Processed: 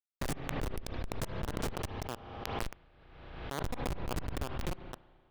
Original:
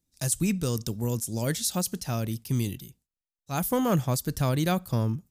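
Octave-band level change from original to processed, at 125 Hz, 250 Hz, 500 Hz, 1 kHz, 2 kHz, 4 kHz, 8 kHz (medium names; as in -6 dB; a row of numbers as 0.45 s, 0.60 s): -13.5 dB, -14.0 dB, -10.0 dB, -7.0 dB, -4.5 dB, -9.0 dB, -17.0 dB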